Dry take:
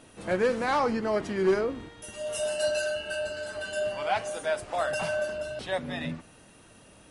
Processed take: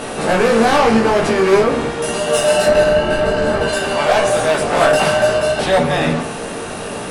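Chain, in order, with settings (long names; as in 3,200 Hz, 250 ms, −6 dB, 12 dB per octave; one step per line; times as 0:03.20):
compressor on every frequency bin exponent 0.6
0:02.66–0:03.68: spectral tilt −3 dB per octave
harmonic generator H 5 −7 dB, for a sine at −10.5 dBFS
multi-voice chorus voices 2, 0.52 Hz, delay 17 ms, depth 4.9 ms
on a send: convolution reverb RT60 0.35 s, pre-delay 7 ms, DRR 6 dB
on the sum: level +5.5 dB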